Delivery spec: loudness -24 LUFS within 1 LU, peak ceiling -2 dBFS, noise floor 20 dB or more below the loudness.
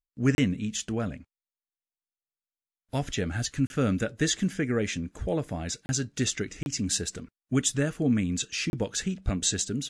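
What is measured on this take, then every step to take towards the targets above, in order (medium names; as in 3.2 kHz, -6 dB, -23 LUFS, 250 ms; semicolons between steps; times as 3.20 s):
dropouts 5; longest dropout 31 ms; loudness -29.0 LUFS; peak level -11.0 dBFS; loudness target -24.0 LUFS
-> interpolate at 0.35/3.67/5.86/6.63/8.70 s, 31 ms; trim +5 dB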